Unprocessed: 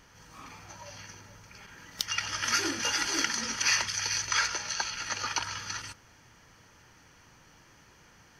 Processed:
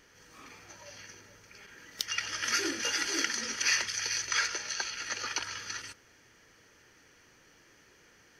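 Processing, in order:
drawn EQ curve 160 Hz 0 dB, 420 Hz +11 dB, 930 Hz 0 dB, 1,800 Hz +9 dB, 2,800 Hz +7 dB
level −9 dB

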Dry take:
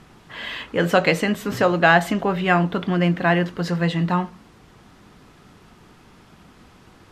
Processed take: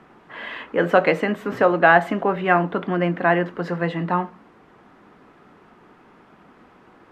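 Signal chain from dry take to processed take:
three-way crossover with the lows and the highs turned down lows −15 dB, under 210 Hz, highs −17 dB, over 2,300 Hz
level +2 dB

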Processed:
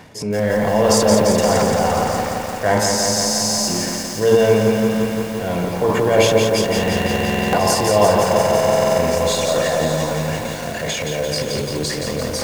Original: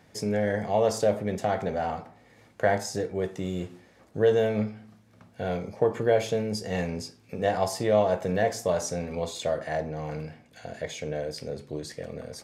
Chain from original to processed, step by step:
transient designer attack −5 dB, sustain +10 dB
reversed playback
upward compression, threshold −25 dBFS
reversed playback
hollow resonant body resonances 1,000/2,800 Hz, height 10 dB
on a send: echo with a time of its own for lows and highs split 1,200 Hz, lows 84 ms, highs 588 ms, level −11 dB
on the sum: buffer that repeats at 0:02.89/0:06.74/0:08.19, samples 2,048, times 16
feedback echo at a low word length 172 ms, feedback 80%, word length 7 bits, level −4 dB
level +6.5 dB

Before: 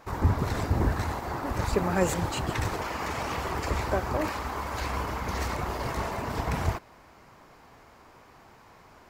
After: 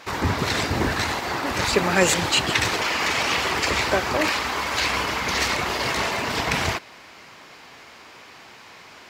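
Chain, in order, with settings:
meter weighting curve D
level +6 dB

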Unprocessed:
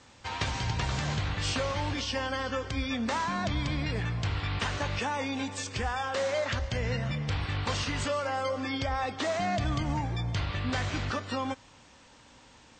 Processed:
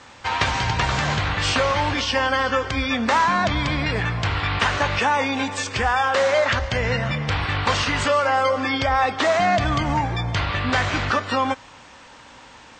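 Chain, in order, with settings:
parametric band 1,300 Hz +8 dB 3 octaves
level +5.5 dB

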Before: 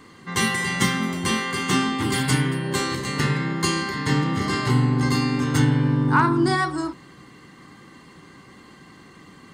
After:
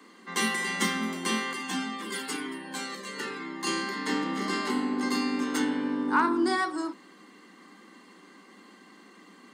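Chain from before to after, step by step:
Butterworth high-pass 190 Hz 72 dB per octave
0:01.53–0:03.67: flanger whose copies keep moving one way falling 1 Hz
level −5 dB

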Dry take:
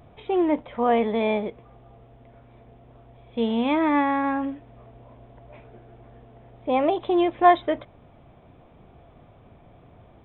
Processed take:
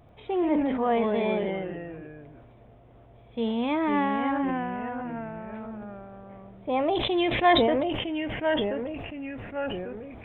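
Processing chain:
0:06.95–0:07.53: high shelf with overshoot 1,700 Hz +7.5 dB, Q 1.5
delay with pitch and tempo change per echo 90 ms, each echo −2 semitones, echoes 3, each echo −6 dB
level that may fall only so fast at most 27 dB per second
level −4.5 dB

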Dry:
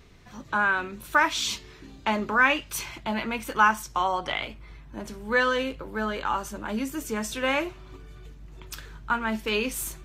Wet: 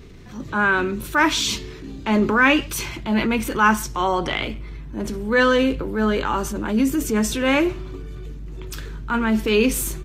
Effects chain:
low shelf with overshoot 510 Hz +6 dB, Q 1.5
transient designer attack −6 dB, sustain +3 dB
far-end echo of a speakerphone 130 ms, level −23 dB
level +5.5 dB

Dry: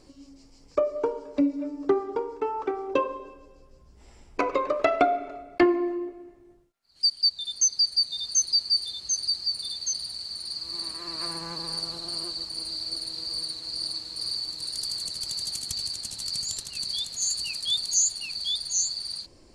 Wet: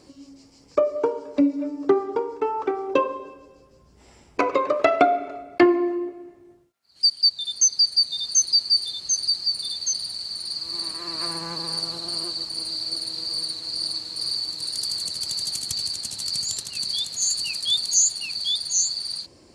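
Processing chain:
high-pass filter 83 Hz 12 dB per octave
level +4 dB

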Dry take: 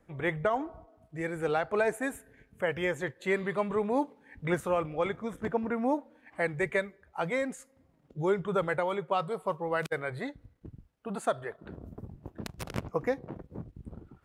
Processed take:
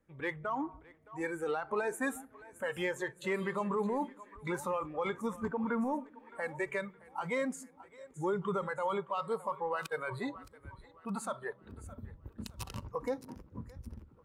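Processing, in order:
in parallel at −8 dB: soft clipping −31.5 dBFS, distortion −7 dB
on the sum: dynamic equaliser 1,000 Hz, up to +6 dB, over −44 dBFS, Q 1.4
brickwall limiter −21.5 dBFS, peak gain reduction 9 dB
parametric band 700 Hz −10 dB 0.24 octaves
echo with a time of its own for lows and highs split 310 Hz, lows 154 ms, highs 617 ms, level −12.5 dB
noise reduction from a noise print of the clip's start 11 dB
level −2 dB

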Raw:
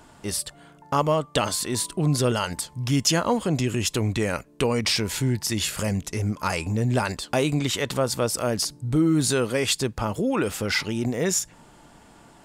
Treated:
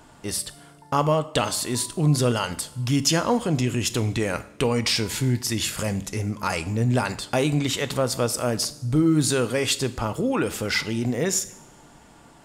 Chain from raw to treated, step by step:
coupled-rooms reverb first 0.6 s, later 2.2 s, from −18 dB, DRR 12 dB

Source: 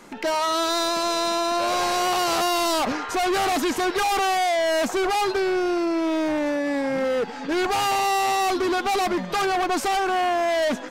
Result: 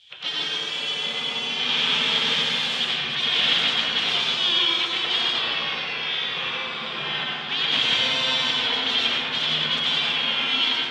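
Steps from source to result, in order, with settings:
high-pass filter 180 Hz 12 dB per octave
gate on every frequency bin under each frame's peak −20 dB weak
low-pass with resonance 3,300 Hz, resonance Q 8
convolution reverb RT60 2.4 s, pre-delay 87 ms, DRR −4.5 dB

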